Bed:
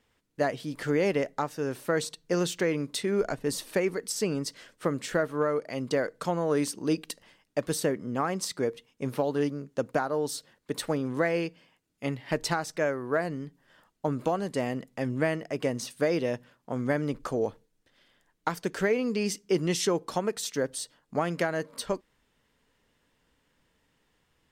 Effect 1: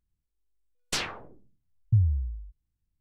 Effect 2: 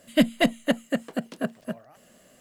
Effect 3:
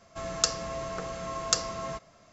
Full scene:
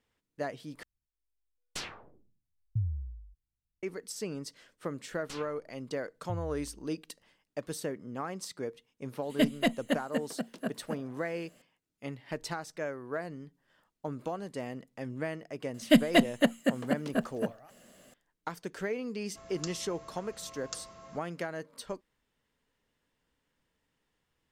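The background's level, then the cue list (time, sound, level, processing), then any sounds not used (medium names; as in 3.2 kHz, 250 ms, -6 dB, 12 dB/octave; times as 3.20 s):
bed -8.5 dB
0.83 s: replace with 1 -9.5 dB
4.37 s: add 1 -16 dB
9.22 s: add 2 -6.5 dB
15.74 s: add 2 -1.5 dB
19.20 s: add 3 -15.5 dB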